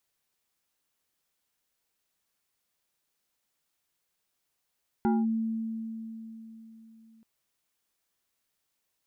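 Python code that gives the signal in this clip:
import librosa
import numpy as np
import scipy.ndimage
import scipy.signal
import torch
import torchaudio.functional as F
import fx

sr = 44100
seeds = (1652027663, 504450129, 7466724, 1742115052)

y = fx.fm2(sr, length_s=2.18, level_db=-21.0, carrier_hz=224.0, ratio=2.63, index=0.99, index_s=0.21, decay_s=3.8, shape='linear')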